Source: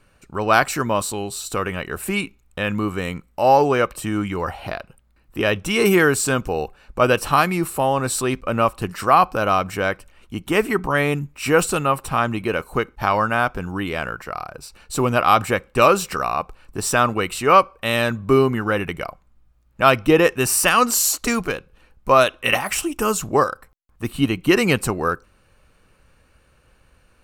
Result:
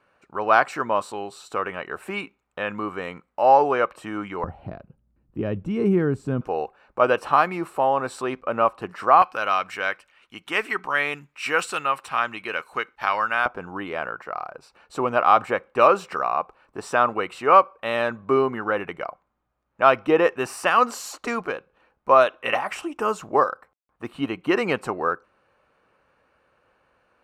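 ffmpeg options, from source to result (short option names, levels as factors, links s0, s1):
-af "asetnsamples=n=441:p=0,asendcmd='4.44 bandpass f 160;6.41 bandpass f 840;9.22 bandpass f 2000;13.46 bandpass f 840',bandpass=f=920:t=q:w=0.77:csg=0"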